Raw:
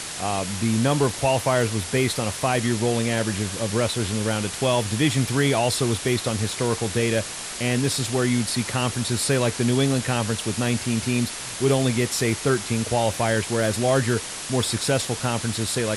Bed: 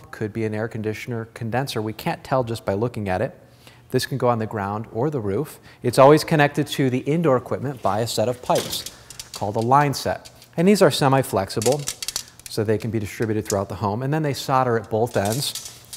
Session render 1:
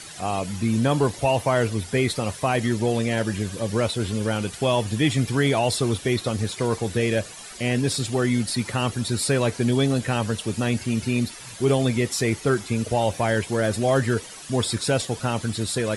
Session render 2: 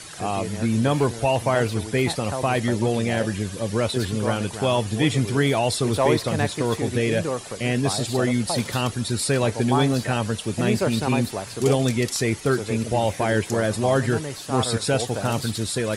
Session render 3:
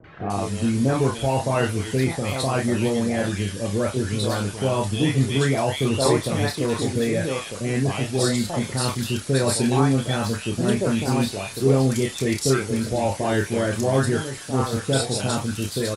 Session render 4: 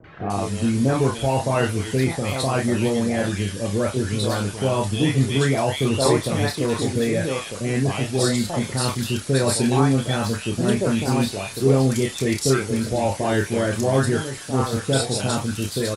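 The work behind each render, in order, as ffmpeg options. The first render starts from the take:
-af "afftdn=nr=12:nf=-33"
-filter_complex "[1:a]volume=-9dB[a];[0:a][a]amix=inputs=2:normalize=0"
-filter_complex "[0:a]asplit=2[a][b];[b]adelay=30,volume=-6dB[c];[a][c]amix=inputs=2:normalize=0,acrossover=split=750|2300[d][e][f];[e]adelay=40[g];[f]adelay=300[h];[d][g][h]amix=inputs=3:normalize=0"
-af "volume=1dB"

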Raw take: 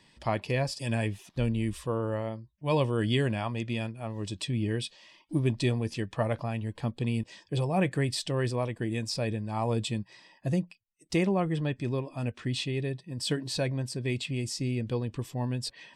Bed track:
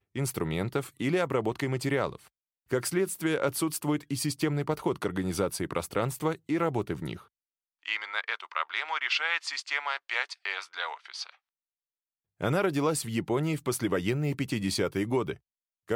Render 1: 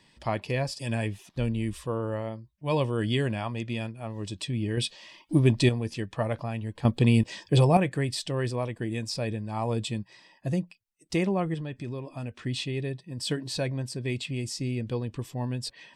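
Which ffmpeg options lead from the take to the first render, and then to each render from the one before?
-filter_complex "[0:a]asettb=1/sr,asplit=3[a][b][c];[a]atrim=end=4.774[d];[b]atrim=start=4.77:end=5.69,asetpts=PTS-STARTPTS,afade=t=in:d=0.004:c=qsin,afade=t=out:st=0.916:d=0.004:c=qsin,acontrast=56[e];[c]atrim=start=5.686[f];[d][e]acrossfade=d=0.004:c1=hsin:c2=qsin[g];[g][f]acrossfade=d=0.004:c1=qsin:c2=hsin,asettb=1/sr,asplit=3[h][i][j];[h]atrim=end=11.544[k];[i]atrim=start=11.54:end=12.32,asetpts=PTS-STARTPTS,afade=t=in:d=0.004:c=qsin,afade=t=out:st=0.776:d=0.004:c=qsin,acompressor=threshold=-31dB:ratio=6:attack=3.2:release=140:knee=1:detection=peak[l];[j]atrim=start=12.316[m];[k][l]acrossfade=d=0.004:c1=hsin:c2=qsin[n];[n][m]acrossfade=d=0.004:c1=qsin:c2=hsin,asplit=3[o][p][q];[o]atrim=end=6.852[r];[p]atrim=start=6.848:end=7.772,asetpts=PTS-STARTPTS,volume=9dB[s];[q]atrim=start=7.768[t];[r][s]acrossfade=d=0.004:c1=hsin:c2=hsin[u];[u][t]acrossfade=d=0.004:c1=hsin:c2=hsin"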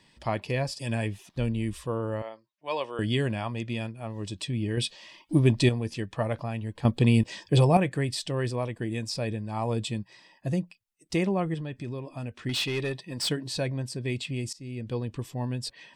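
-filter_complex "[0:a]asettb=1/sr,asplit=3[a][b][c];[a]atrim=end=2.224[d];[b]atrim=start=2.22:end=2.99,asetpts=PTS-STARTPTS,afade=t=in:d=0.004:c=qsin,afade=t=out:st=0.766:d=0.004:c=qsin,highpass=580,lowpass=5.8k[e];[c]atrim=start=2.986[f];[d][e]acrossfade=d=0.004:c1=hsin:c2=qsin[g];[g][f]acrossfade=d=0.004:c1=qsin:c2=hsin,asettb=1/sr,asplit=3[h][i][j];[h]atrim=end=12.494[k];[i]atrim=start=12.49:end=13.29,asetpts=PTS-STARTPTS,afade=t=in:d=0.004:c=qsin,afade=t=out:st=0.796:d=0.004:c=qsin,asplit=2[l][m];[m]highpass=f=720:p=1,volume=17dB,asoftclip=type=tanh:threshold=-20.5dB[n];[l][n]amix=inputs=2:normalize=0,lowpass=f=7k:p=1,volume=-6dB[o];[j]atrim=start=13.286[p];[k][o]acrossfade=d=0.004:c1=hsin:c2=qsin[q];[q][p]acrossfade=d=0.004:c1=qsin:c2=hsin,asplit=2[r][s];[r]atrim=end=14.53,asetpts=PTS-STARTPTS,afade=t=out:st=14.526:d=0.004:c=hsin:silence=0.1[t];[s]atrim=start=14.53,asetpts=PTS-STARTPTS,afade=t=in:d=0.46:silence=0.1[u];[t][u]concat=n=2:v=0:a=1"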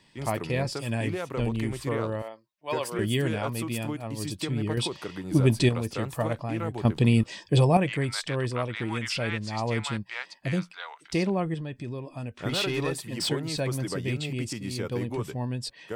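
-filter_complex "[1:a]volume=-6dB[a];[0:a][a]amix=inputs=2:normalize=0"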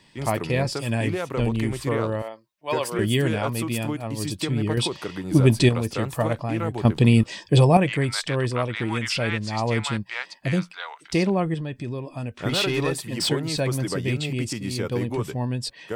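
-af "volume=4.5dB"

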